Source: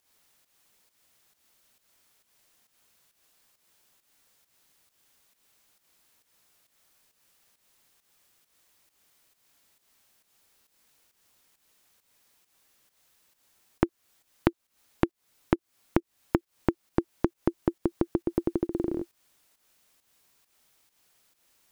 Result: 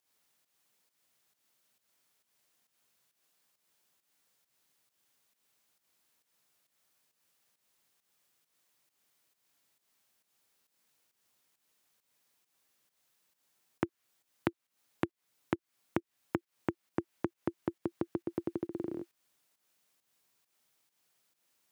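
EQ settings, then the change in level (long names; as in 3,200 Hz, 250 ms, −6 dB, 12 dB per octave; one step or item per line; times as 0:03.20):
high-pass filter 94 Hz 24 dB per octave
dynamic equaliser 2,000 Hz, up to +4 dB, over −51 dBFS, Q 0.7
−8.5 dB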